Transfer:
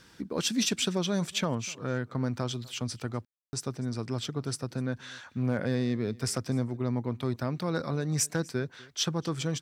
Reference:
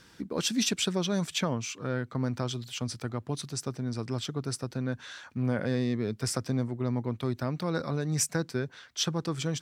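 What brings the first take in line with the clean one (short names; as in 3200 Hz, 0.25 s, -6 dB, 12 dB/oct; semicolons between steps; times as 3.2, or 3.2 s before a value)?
clip repair -17.5 dBFS; room tone fill 3.25–3.53; inverse comb 0.248 s -23.5 dB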